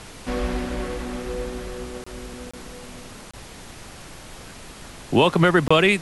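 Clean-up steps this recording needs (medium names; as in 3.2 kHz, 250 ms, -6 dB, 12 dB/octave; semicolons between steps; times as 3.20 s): interpolate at 2.04/2.51/3.31/5.68 s, 25 ms; noise print and reduce 24 dB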